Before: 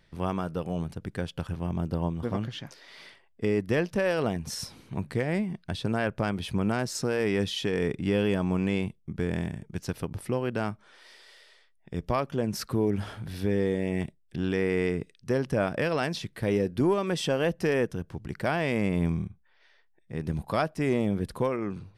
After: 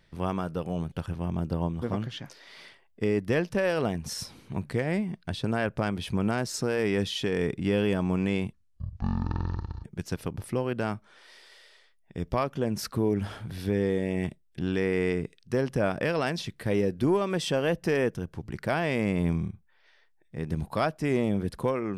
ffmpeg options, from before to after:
ffmpeg -i in.wav -filter_complex "[0:a]asplit=4[link_01][link_02][link_03][link_04];[link_01]atrim=end=0.922[link_05];[link_02]atrim=start=1.328:end=8.944[link_06];[link_03]atrim=start=8.94:end=9.61,asetpts=PTS-STARTPTS,asetrate=22491,aresample=44100,atrim=end_sample=57935,asetpts=PTS-STARTPTS[link_07];[link_04]atrim=start=9.606[link_08];[link_05][link_06]acrossfade=duration=0.004:curve1=hsin:curve2=hsin[link_09];[link_09][link_07]acrossfade=duration=0.004:curve1=hsin:curve2=hsin[link_10];[link_10][link_08]acrossfade=duration=0.004:curve1=hsin:curve2=hsin" out.wav

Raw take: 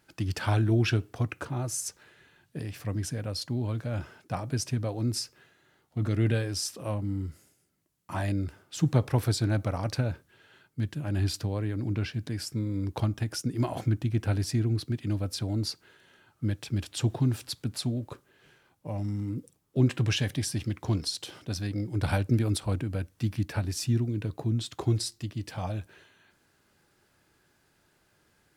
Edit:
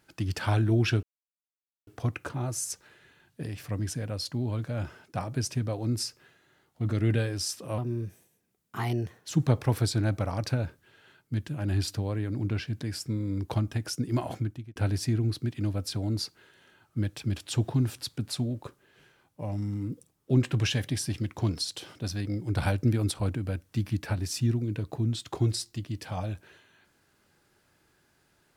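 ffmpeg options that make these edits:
ffmpeg -i in.wav -filter_complex "[0:a]asplit=5[link_01][link_02][link_03][link_04][link_05];[link_01]atrim=end=1.03,asetpts=PTS-STARTPTS,afade=type=out:start_time=1.026:duration=0.004:curve=hsin,apad=pad_dur=0.84[link_06];[link_02]atrim=start=1.03:end=6.944,asetpts=PTS-STARTPTS,afade=type=in:duration=0.004:curve=hsin[link_07];[link_03]atrim=start=6.94:end=8.75,asetpts=PTS-STARTPTS,asetrate=52920,aresample=44100[link_08];[link_04]atrim=start=8.746:end=14.22,asetpts=PTS-STARTPTS,afade=type=out:start_time=4.934:duration=0.54[link_09];[link_05]atrim=start=14.22,asetpts=PTS-STARTPTS,afade=type=in:duration=0.004:curve=hsin[link_10];[link_06][link_07]concat=n=2:v=0:a=1[link_11];[link_11][link_08]acrossfade=duration=0.004:curve1=hsin:curve2=hsin[link_12];[link_09][link_10]concat=n=2:v=0:a=1[link_13];[link_12][link_13]acrossfade=duration=0.004:curve1=hsin:curve2=hsin" out.wav

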